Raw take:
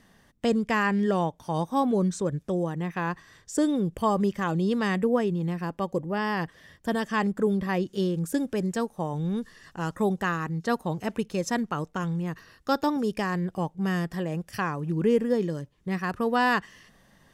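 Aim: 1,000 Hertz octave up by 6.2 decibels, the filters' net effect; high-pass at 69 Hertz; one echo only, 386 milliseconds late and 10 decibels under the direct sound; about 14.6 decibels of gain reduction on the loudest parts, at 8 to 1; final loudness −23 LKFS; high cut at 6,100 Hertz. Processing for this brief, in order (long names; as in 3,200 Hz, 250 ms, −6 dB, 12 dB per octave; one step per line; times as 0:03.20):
high-pass filter 69 Hz
low-pass filter 6,100 Hz
parametric band 1,000 Hz +7.5 dB
downward compressor 8 to 1, threshold −30 dBFS
single-tap delay 386 ms −10 dB
level +11.5 dB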